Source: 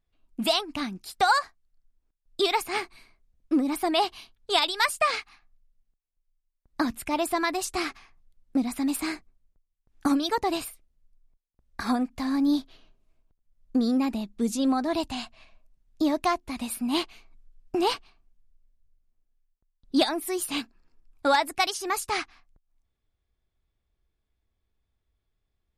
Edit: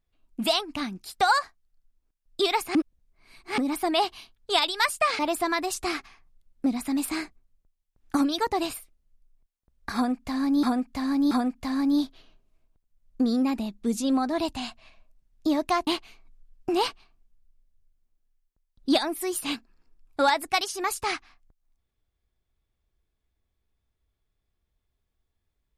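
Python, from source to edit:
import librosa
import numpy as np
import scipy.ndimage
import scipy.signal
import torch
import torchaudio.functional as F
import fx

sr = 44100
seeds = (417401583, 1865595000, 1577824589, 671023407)

y = fx.edit(x, sr, fx.reverse_span(start_s=2.75, length_s=0.83),
    fx.cut(start_s=5.19, length_s=1.91),
    fx.repeat(start_s=11.86, length_s=0.68, count=3),
    fx.cut(start_s=16.42, length_s=0.51), tone=tone)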